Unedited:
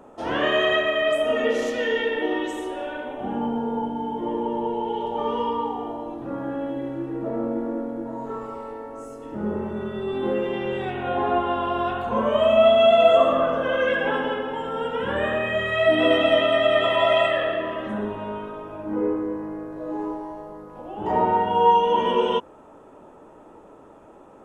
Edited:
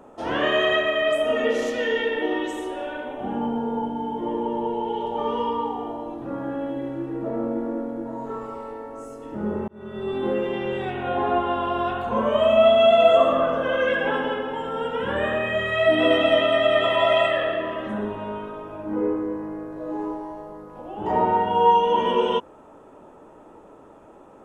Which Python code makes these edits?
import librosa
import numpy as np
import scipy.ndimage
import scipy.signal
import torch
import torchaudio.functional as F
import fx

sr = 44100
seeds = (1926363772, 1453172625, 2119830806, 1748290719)

y = fx.edit(x, sr, fx.fade_in_span(start_s=9.68, length_s=0.39), tone=tone)